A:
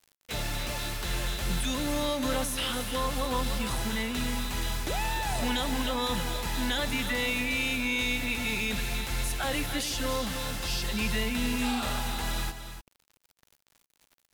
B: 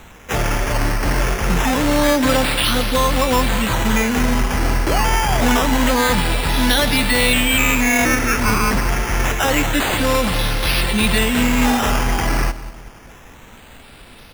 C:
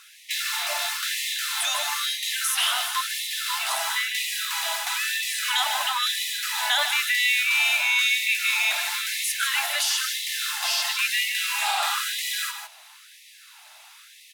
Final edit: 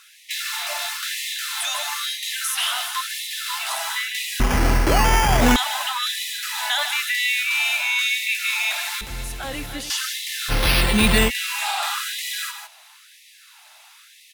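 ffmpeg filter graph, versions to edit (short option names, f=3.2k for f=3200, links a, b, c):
-filter_complex "[1:a]asplit=2[a][b];[2:a]asplit=4[c][d][e][f];[c]atrim=end=4.402[g];[a]atrim=start=4.398:end=5.562[h];[d]atrim=start=5.558:end=9.012[i];[0:a]atrim=start=9.008:end=9.902[j];[e]atrim=start=9.898:end=10.52[k];[b]atrim=start=10.48:end=11.31[l];[f]atrim=start=11.27[m];[g][h]acrossfade=d=0.004:c1=hsin:c2=hsin[n];[n][i]acrossfade=d=0.004:c1=hsin:c2=hsin[o];[o][j]acrossfade=d=0.004:c1=hsin:c2=hsin[p];[p][k]acrossfade=d=0.004:c1=hsin:c2=hsin[q];[q][l]acrossfade=d=0.04:c1=tri:c2=tri[r];[r][m]acrossfade=d=0.04:c1=tri:c2=tri"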